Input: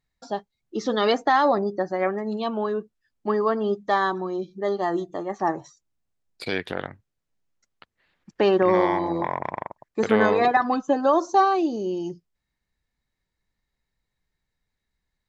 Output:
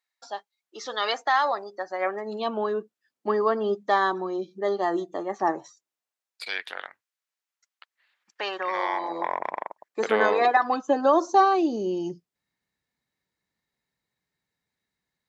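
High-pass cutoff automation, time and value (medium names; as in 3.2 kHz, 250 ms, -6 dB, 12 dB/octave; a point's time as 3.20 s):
1.78 s 860 Hz
2.50 s 260 Hz
5.53 s 260 Hz
6.43 s 1.1 kHz
8.71 s 1.1 kHz
9.35 s 420 Hz
10.65 s 420 Hz
11.36 s 140 Hz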